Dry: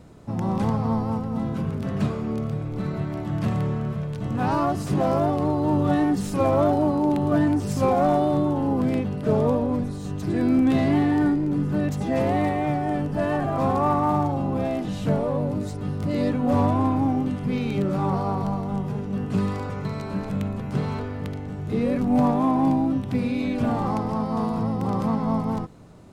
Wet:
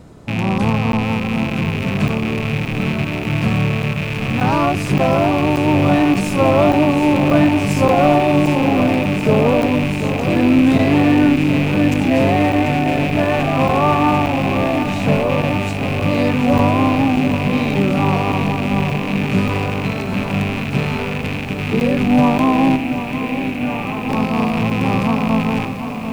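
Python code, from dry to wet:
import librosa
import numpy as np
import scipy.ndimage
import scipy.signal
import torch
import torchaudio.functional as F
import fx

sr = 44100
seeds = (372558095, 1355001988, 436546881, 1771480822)

y = fx.rattle_buzz(x, sr, strikes_db=-30.0, level_db=-21.0)
y = fx.ladder_lowpass(y, sr, hz=3200.0, resonance_pct=45, at=(22.76, 24.09))
y = fx.buffer_crackle(y, sr, first_s=0.92, period_s=0.58, block=512, kind='zero')
y = fx.echo_crushed(y, sr, ms=740, feedback_pct=80, bits=8, wet_db=-10)
y = F.gain(torch.from_numpy(y), 6.5).numpy()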